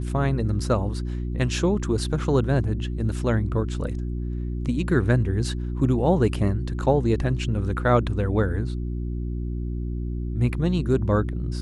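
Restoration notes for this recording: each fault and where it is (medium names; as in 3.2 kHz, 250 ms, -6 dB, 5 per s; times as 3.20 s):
hum 60 Hz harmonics 6 -28 dBFS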